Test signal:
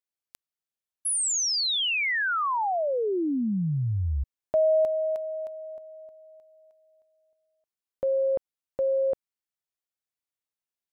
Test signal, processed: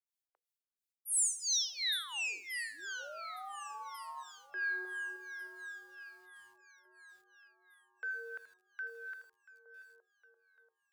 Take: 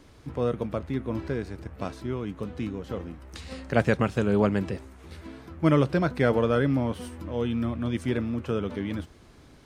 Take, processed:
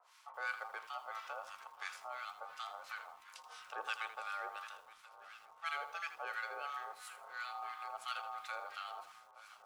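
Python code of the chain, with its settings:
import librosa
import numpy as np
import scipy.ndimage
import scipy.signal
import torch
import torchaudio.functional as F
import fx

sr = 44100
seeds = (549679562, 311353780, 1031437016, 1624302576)

y = fx.high_shelf(x, sr, hz=5000.0, db=-12.0)
y = y * np.sin(2.0 * np.pi * 1000.0 * np.arange(len(y)) / sr)
y = fx.rider(y, sr, range_db=4, speed_s=2.0)
y = np.diff(y, prepend=0.0)
y = 10.0 ** (-25.0 / 20.0) * np.tanh(y / 10.0 ** (-25.0 / 20.0))
y = scipy.signal.sosfilt(scipy.signal.butter(6, 380.0, 'highpass', fs=sr, output='sos'), y)
y = fx.hum_notches(y, sr, base_hz=50, count=10)
y = fx.echo_swing(y, sr, ms=1445, ratio=1.5, feedback_pct=41, wet_db=-17)
y = fx.harmonic_tremolo(y, sr, hz=2.9, depth_pct=100, crossover_hz=1100.0)
y = fx.echo_crushed(y, sr, ms=81, feedback_pct=35, bits=11, wet_db=-11.5)
y = y * librosa.db_to_amplitude(6.5)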